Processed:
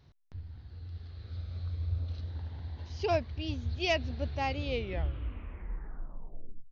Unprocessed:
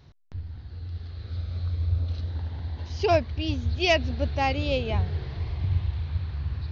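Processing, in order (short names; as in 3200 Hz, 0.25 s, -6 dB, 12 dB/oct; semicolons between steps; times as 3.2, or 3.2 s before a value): tape stop at the end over 2.13 s; gain -7.5 dB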